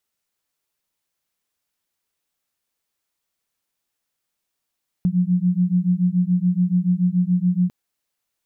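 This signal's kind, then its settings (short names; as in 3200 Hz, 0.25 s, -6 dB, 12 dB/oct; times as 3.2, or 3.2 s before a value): beating tones 176 Hz, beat 7 Hz, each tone -19 dBFS 2.65 s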